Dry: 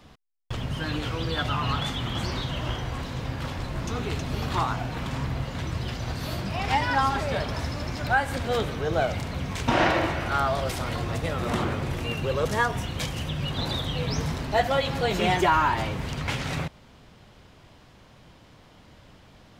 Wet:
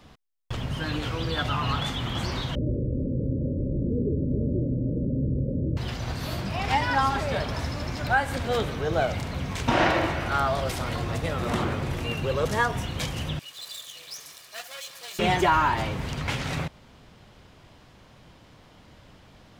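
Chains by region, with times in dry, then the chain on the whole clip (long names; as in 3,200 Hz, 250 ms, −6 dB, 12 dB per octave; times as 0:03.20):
0:02.55–0:05.77: Chebyshev low-pass filter 600 Hz, order 10 + dynamic equaliser 270 Hz, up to +7 dB, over −46 dBFS, Q 0.82 + envelope flattener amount 50%
0:13.39–0:15.19: lower of the sound and its delayed copy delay 1.7 ms + first difference
whole clip: no processing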